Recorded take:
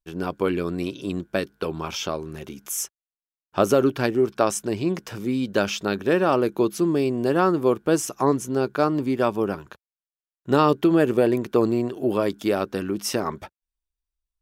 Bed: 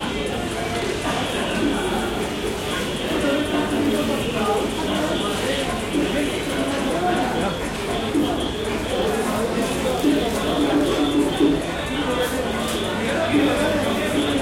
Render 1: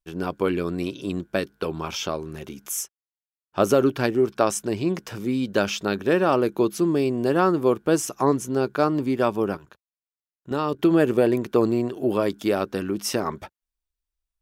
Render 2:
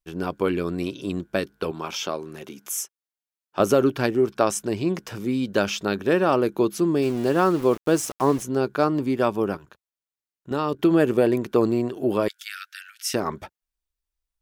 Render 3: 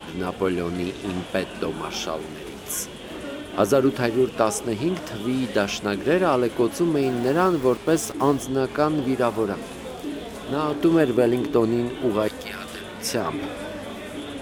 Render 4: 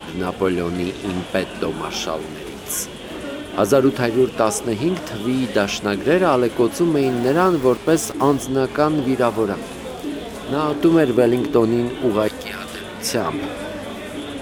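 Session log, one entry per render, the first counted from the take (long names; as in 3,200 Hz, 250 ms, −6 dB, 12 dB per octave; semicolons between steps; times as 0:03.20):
0:02.78–0:03.62: duck −17 dB, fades 0.12 s; 0:09.57–0:10.79: output level in coarse steps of 12 dB
0:01.71–0:03.60: Bessel high-pass filter 220 Hz; 0:07.02–0:08.43: centre clipping without the shift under −34 dBFS; 0:12.28–0:13.14: Butterworth high-pass 1,400 Hz 72 dB per octave
mix in bed −13 dB
level +4 dB; brickwall limiter −3 dBFS, peak gain reduction 2.5 dB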